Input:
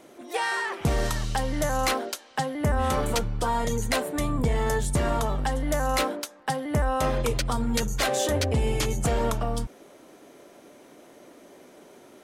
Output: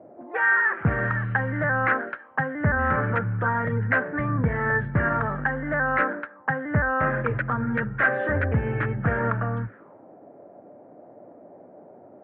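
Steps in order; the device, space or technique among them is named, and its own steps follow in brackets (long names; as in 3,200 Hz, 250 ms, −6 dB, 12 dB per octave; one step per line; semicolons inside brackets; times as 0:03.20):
envelope filter bass rig (envelope-controlled low-pass 640–1,600 Hz up, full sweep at −29.5 dBFS; loudspeaker in its box 71–2,400 Hz, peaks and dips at 110 Hz +8 dB, 180 Hz +4 dB, 390 Hz −4 dB, 720 Hz −5 dB, 1,000 Hz −4 dB, 1,700 Hz +3 dB)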